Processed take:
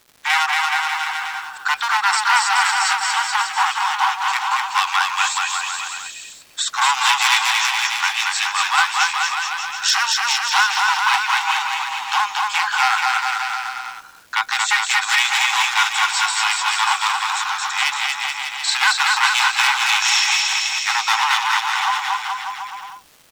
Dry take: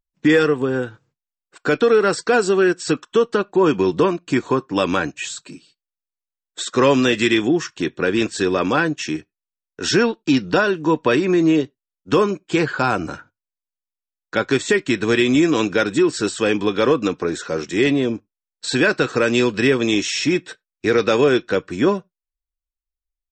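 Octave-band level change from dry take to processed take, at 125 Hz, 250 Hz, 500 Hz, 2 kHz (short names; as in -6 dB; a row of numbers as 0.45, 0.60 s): under -35 dB, under -40 dB, under -30 dB, +6.5 dB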